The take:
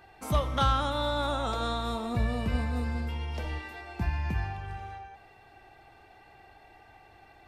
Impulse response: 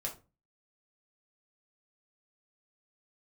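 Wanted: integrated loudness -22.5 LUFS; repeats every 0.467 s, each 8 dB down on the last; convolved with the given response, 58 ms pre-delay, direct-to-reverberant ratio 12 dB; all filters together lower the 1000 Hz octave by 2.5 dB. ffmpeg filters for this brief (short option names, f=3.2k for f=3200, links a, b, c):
-filter_complex "[0:a]equalizer=f=1k:t=o:g=-3.5,aecho=1:1:467|934|1401|1868|2335:0.398|0.159|0.0637|0.0255|0.0102,asplit=2[a][b];[1:a]atrim=start_sample=2205,adelay=58[c];[b][c]afir=irnorm=-1:irlink=0,volume=-13dB[d];[a][d]amix=inputs=2:normalize=0,volume=8.5dB"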